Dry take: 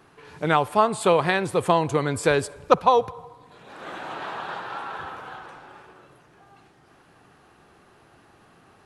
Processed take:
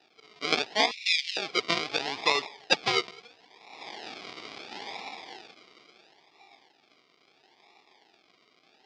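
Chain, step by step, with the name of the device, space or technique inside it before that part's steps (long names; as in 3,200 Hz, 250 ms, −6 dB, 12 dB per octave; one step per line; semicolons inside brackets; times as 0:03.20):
circuit-bent sampling toy (sample-and-hold swept by an LFO 40×, swing 60% 0.74 Hz; loudspeaker in its box 530–5,600 Hz, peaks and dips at 550 Hz −10 dB, 820 Hz +4 dB, 1,500 Hz −7 dB, 2,300 Hz +7 dB, 3,500 Hz +7 dB, 4,900 Hz +9 dB)
0:00.91–0:01.37: elliptic high-pass filter 2,300 Hz, stop band 70 dB
level −2.5 dB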